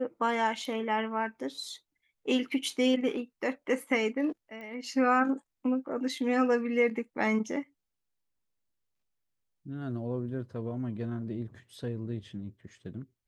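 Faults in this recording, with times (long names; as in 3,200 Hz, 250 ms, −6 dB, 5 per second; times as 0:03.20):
0:04.61: click −33 dBFS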